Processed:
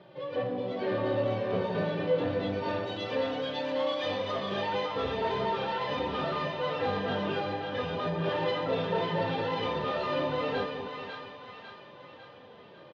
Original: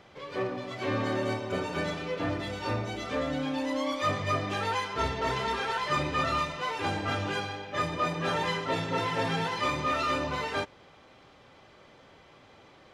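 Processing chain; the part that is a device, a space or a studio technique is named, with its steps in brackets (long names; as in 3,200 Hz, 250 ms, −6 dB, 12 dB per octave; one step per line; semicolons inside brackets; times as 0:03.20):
0:02.68–0:04.52: spectral tilt +2.5 dB per octave
barber-pole flanger into a guitar amplifier (barber-pole flanger 2.8 ms −1.1 Hz; soft clipping −29.5 dBFS, distortion −13 dB; loudspeaker in its box 110–3,800 Hz, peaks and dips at 130 Hz +3 dB, 190 Hz +4 dB, 510 Hz +8 dB, 1,300 Hz −7 dB, 2,200 Hz −8 dB)
echo with a time of its own for lows and highs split 840 Hz, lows 224 ms, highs 549 ms, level −5 dB
level +3.5 dB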